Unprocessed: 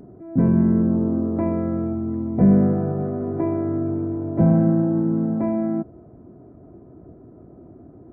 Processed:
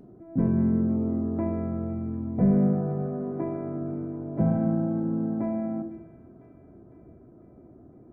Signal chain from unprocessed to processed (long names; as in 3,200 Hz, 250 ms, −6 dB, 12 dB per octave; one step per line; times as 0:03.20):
delay with a high-pass on its return 503 ms, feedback 59%, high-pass 2,000 Hz, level −10.5 dB
on a send at −7.5 dB: convolution reverb RT60 0.75 s, pre-delay 4 ms
on the sum: level −6.5 dB